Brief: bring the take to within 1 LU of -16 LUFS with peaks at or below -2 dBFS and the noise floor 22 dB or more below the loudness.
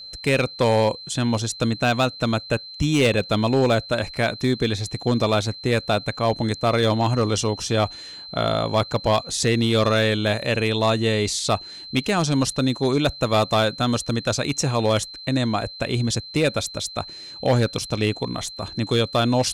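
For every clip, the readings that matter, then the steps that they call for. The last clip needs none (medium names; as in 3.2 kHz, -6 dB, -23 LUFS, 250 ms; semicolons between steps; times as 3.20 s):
clipped samples 1.1%; clipping level -12.0 dBFS; steady tone 4.1 kHz; tone level -36 dBFS; loudness -22.0 LUFS; peak level -12.0 dBFS; loudness target -16.0 LUFS
-> clip repair -12 dBFS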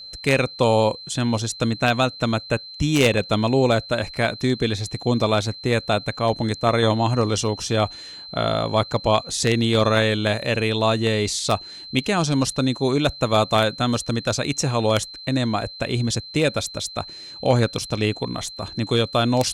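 clipped samples 0.0%; steady tone 4.1 kHz; tone level -36 dBFS
-> band-stop 4.1 kHz, Q 30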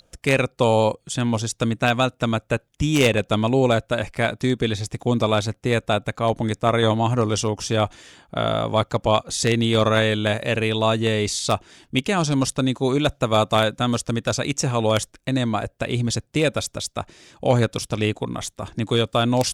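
steady tone not found; loudness -22.0 LUFS; peak level -3.0 dBFS; loudness target -16.0 LUFS
-> trim +6 dB; peak limiter -2 dBFS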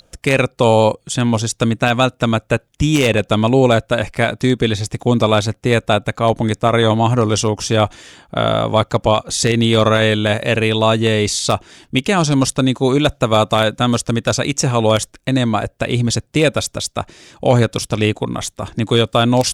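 loudness -16.5 LUFS; peak level -2.0 dBFS; noise floor -59 dBFS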